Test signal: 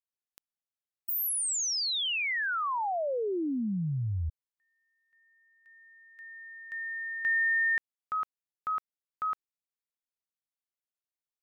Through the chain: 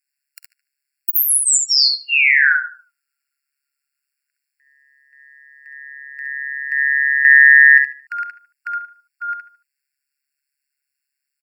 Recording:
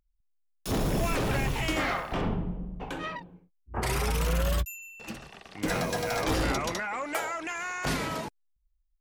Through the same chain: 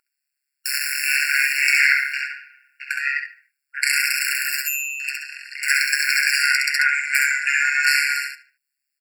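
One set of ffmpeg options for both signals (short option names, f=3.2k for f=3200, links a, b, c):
-filter_complex "[0:a]tremolo=f=140:d=0.947,asplit=2[a][b];[b]aecho=0:1:50|66:0.133|0.596[c];[a][c]amix=inputs=2:normalize=0,apsyclip=22dB,asplit=2[d][e];[e]adelay=75,lowpass=f=4.3k:p=1,volume=-14dB,asplit=2[f][g];[g]adelay=75,lowpass=f=4.3k:p=1,volume=0.36,asplit=2[h][i];[i]adelay=75,lowpass=f=4.3k:p=1,volume=0.36[j];[f][h][j]amix=inputs=3:normalize=0[k];[d][k]amix=inputs=2:normalize=0,afftfilt=real='re*eq(mod(floor(b*sr/1024/1400),2),1)':imag='im*eq(mod(floor(b*sr/1024/1400),2),1)':win_size=1024:overlap=0.75,volume=-1.5dB"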